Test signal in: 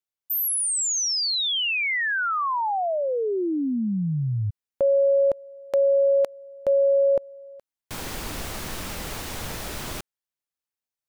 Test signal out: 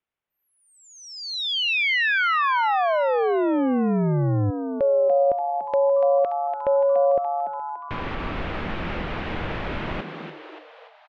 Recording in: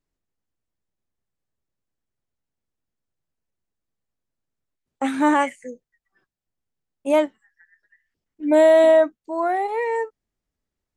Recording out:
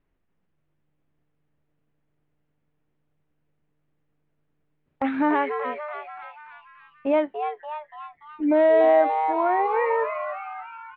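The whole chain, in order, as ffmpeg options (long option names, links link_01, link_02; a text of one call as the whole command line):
ffmpeg -i in.wav -filter_complex "[0:a]lowpass=frequency=2800:width=0.5412,lowpass=frequency=2800:width=1.3066,acompressor=threshold=-34dB:ratio=2:attack=0.57:release=946:detection=rms,asplit=2[link_01][link_02];[link_02]asplit=6[link_03][link_04][link_05][link_06][link_07][link_08];[link_03]adelay=289,afreqshift=150,volume=-7.5dB[link_09];[link_04]adelay=578,afreqshift=300,volume=-13.2dB[link_10];[link_05]adelay=867,afreqshift=450,volume=-18.9dB[link_11];[link_06]adelay=1156,afreqshift=600,volume=-24.5dB[link_12];[link_07]adelay=1445,afreqshift=750,volume=-30.2dB[link_13];[link_08]adelay=1734,afreqshift=900,volume=-35.9dB[link_14];[link_09][link_10][link_11][link_12][link_13][link_14]amix=inputs=6:normalize=0[link_15];[link_01][link_15]amix=inputs=2:normalize=0,volume=9dB" out.wav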